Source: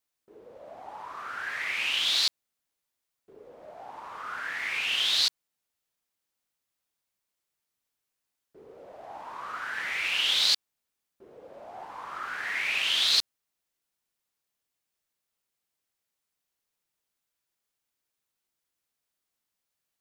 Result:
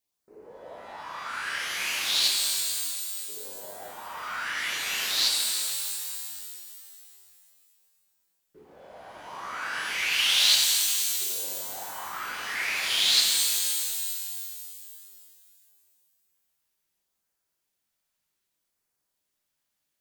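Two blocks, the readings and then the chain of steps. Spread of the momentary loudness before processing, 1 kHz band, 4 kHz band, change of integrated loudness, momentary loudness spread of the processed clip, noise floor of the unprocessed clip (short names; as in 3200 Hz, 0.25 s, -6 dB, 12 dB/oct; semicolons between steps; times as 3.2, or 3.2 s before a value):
21 LU, +2.0 dB, +2.5 dB, +1.0 dB, 20 LU, -85 dBFS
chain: LFO notch sine 0.65 Hz 350–3500 Hz; shimmer reverb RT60 2.6 s, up +12 st, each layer -2 dB, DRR -0.5 dB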